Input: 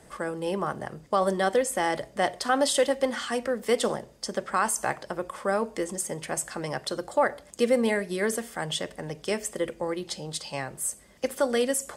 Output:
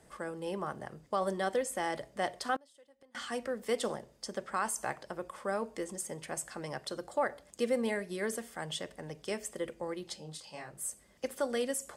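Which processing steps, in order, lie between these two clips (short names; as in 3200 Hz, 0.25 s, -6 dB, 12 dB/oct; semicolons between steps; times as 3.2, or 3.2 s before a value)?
2.56–3.15 flipped gate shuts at -22 dBFS, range -30 dB; 10.16–10.77 detuned doubles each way 28 cents -> 46 cents; gain -8 dB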